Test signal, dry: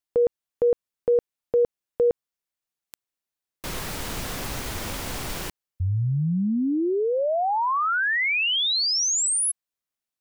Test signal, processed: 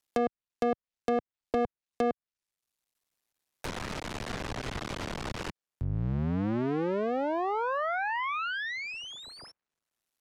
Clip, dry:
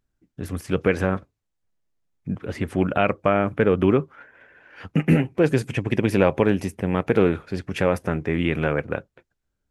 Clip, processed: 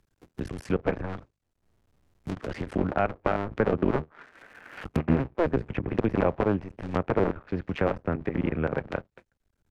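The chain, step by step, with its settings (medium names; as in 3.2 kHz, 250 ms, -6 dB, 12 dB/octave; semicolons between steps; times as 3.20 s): cycle switcher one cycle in 2, muted; low-pass that closes with the level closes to 1.6 kHz, closed at -23 dBFS; three bands compressed up and down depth 40%; trim -3 dB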